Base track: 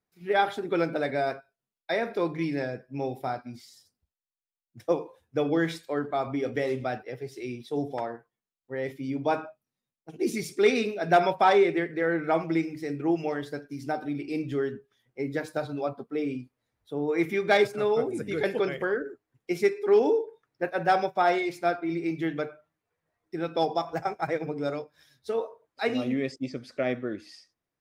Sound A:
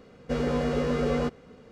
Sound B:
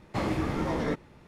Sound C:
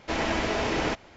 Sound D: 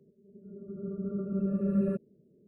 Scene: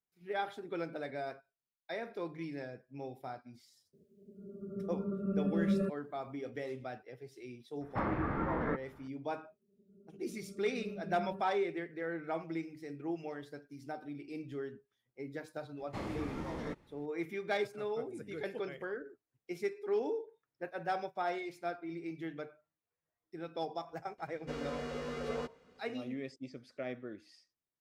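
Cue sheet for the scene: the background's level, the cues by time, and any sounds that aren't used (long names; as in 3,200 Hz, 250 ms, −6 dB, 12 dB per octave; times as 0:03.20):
base track −12.5 dB
0:03.93: mix in D + tilt shelving filter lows −4 dB, about 830 Hz
0:07.81: mix in B −6 dB + low-pass with resonance 1,500 Hz, resonance Q 2.2
0:09.44: mix in D −15.5 dB
0:15.79: mix in B −11 dB
0:24.18: mix in A −8.5 dB + low-shelf EQ 470 Hz −9 dB
not used: C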